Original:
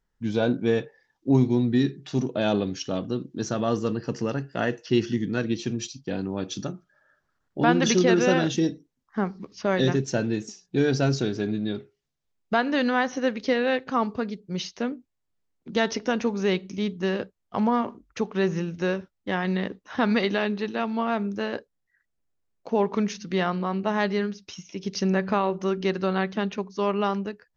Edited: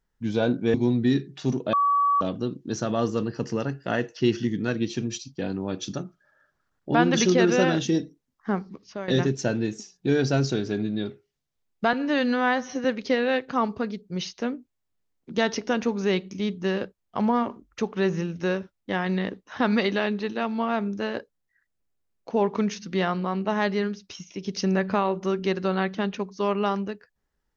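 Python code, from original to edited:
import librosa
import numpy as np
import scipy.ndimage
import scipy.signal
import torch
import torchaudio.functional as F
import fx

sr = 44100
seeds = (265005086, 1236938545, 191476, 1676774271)

y = fx.edit(x, sr, fx.cut(start_s=0.74, length_s=0.69),
    fx.bleep(start_s=2.42, length_s=0.48, hz=1140.0, db=-18.0),
    fx.fade_out_to(start_s=9.27, length_s=0.5, floor_db=-14.0),
    fx.stretch_span(start_s=12.62, length_s=0.61, factor=1.5), tone=tone)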